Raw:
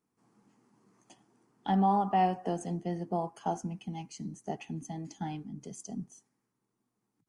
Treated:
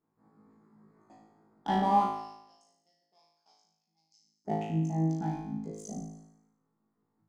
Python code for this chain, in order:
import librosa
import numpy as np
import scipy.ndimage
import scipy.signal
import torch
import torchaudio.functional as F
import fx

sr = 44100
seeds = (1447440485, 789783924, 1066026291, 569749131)

y = fx.wiener(x, sr, points=15)
y = fx.bandpass_q(y, sr, hz=5200.0, q=12.0, at=(2.09, 4.45))
y = fx.room_flutter(y, sr, wall_m=3.2, rt60_s=0.82)